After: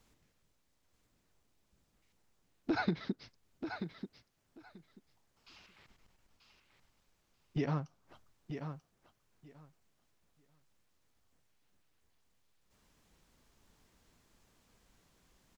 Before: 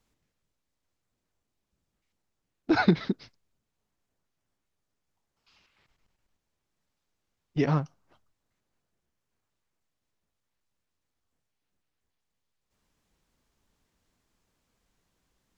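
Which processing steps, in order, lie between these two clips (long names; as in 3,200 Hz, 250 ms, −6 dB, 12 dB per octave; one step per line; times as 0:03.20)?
downward compressor 2.5 to 1, threshold −44 dBFS, peak gain reduction 18.5 dB
repeating echo 936 ms, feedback 16%, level −8 dB
level +5.5 dB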